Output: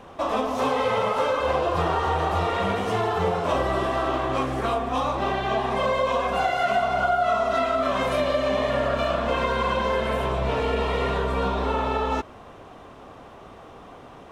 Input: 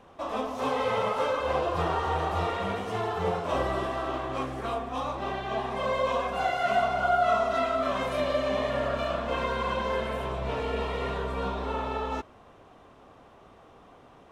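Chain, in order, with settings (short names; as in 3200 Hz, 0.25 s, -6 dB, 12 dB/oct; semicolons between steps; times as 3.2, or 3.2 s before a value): compressor 3:1, threshold -30 dBFS, peak gain reduction 8.5 dB; gain +9 dB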